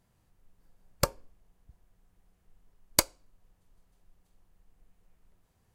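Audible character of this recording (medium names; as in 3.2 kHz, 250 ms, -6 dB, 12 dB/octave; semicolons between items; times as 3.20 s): noise floor -71 dBFS; spectral tilt -2.5 dB/octave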